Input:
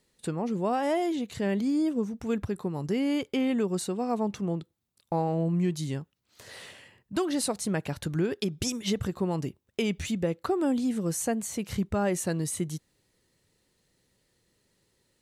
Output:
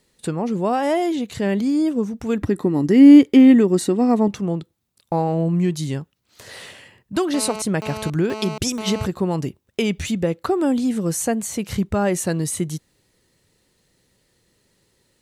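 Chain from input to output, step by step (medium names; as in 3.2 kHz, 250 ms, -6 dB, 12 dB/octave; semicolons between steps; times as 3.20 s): 2.41–4.28 s: small resonant body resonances 290/1900 Hz, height 14 dB, ringing for 40 ms; 7.34–9.06 s: mobile phone buzz -38 dBFS; trim +7 dB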